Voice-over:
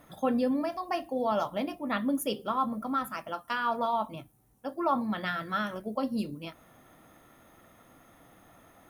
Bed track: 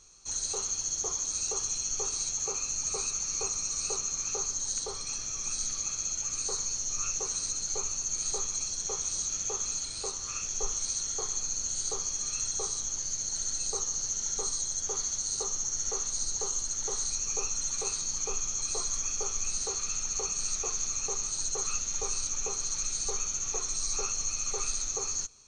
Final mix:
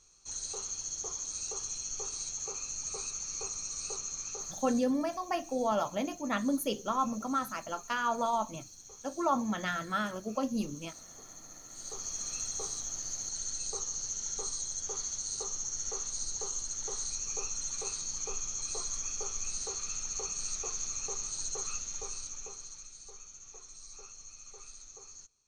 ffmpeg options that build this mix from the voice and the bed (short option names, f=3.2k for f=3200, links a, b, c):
-filter_complex "[0:a]adelay=4400,volume=-1.5dB[a];[1:a]volume=7.5dB,afade=t=out:st=4.18:d=0.76:silence=0.251189,afade=t=in:st=11.69:d=0.46:silence=0.211349,afade=t=out:st=21.54:d=1.36:silence=0.211349[b];[a][b]amix=inputs=2:normalize=0"